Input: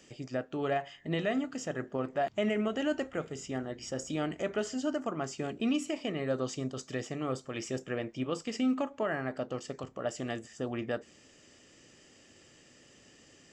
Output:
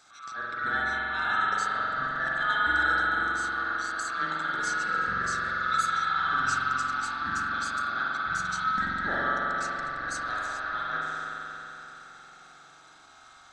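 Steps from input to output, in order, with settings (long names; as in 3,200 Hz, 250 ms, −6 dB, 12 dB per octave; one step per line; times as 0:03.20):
neighbouring bands swapped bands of 1,000 Hz
mains-hum notches 60/120/180 Hz
transient designer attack −11 dB, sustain +6 dB
spring reverb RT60 3.7 s, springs 44 ms, chirp 30 ms, DRR −6 dB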